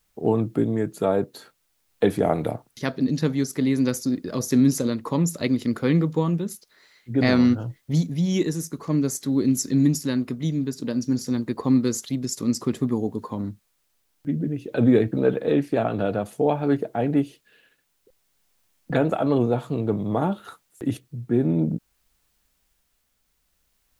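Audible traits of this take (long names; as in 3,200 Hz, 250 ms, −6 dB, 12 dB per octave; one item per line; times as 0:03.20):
a quantiser's noise floor 12 bits, dither triangular
tremolo triangle 0.55 Hz, depth 30%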